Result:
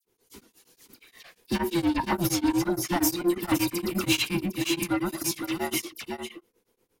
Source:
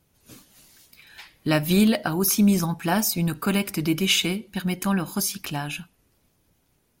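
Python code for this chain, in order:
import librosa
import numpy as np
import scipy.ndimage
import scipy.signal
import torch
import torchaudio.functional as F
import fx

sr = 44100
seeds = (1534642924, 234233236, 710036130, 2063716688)

p1 = fx.band_invert(x, sr, width_hz=500)
p2 = fx.high_shelf(p1, sr, hz=8700.0, db=-8.5, at=(1.56, 3.01))
p3 = fx.leveller(p2, sr, passes=1)
p4 = 10.0 ** (-16.5 / 20.0) * np.tanh(p3 / 10.0 ** (-16.5 / 20.0))
p5 = fx.dispersion(p4, sr, late='lows', ms=53.0, hz=2900.0)
p6 = p5 + fx.echo_single(p5, sr, ms=519, db=-4.5, dry=0)
p7 = p6 * np.abs(np.cos(np.pi * 8.5 * np.arange(len(p6)) / sr))
y = p7 * librosa.db_to_amplitude(-2.0)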